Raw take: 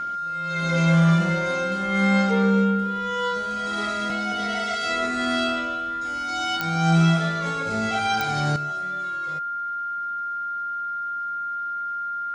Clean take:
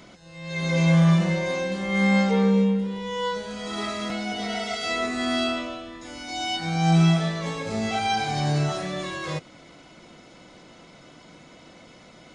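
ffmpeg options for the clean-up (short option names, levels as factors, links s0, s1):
-af "adeclick=t=4,bandreject=f=1400:w=30,asetnsamples=n=441:p=0,asendcmd='8.56 volume volume 12dB',volume=1"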